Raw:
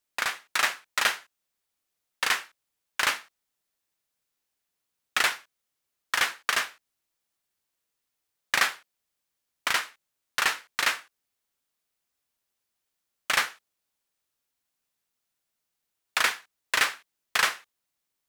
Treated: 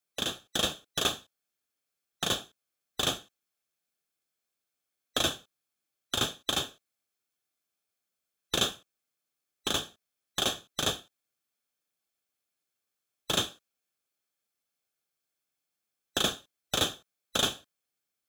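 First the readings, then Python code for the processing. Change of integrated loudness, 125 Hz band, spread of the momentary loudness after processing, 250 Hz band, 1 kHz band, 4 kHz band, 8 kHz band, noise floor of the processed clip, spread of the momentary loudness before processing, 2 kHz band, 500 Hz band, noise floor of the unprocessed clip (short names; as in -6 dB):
-4.0 dB, n/a, 12 LU, +11.5 dB, -7.5 dB, +1.0 dB, -1.5 dB, under -85 dBFS, 11 LU, -13.0 dB, +5.0 dB, -83 dBFS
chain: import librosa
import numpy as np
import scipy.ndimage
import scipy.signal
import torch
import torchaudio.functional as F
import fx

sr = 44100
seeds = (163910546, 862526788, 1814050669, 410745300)

y = fx.band_swap(x, sr, width_hz=2000)
y = fx.notch_comb(y, sr, f0_hz=950.0)
y = F.gain(torch.from_numpy(y), -2.5).numpy()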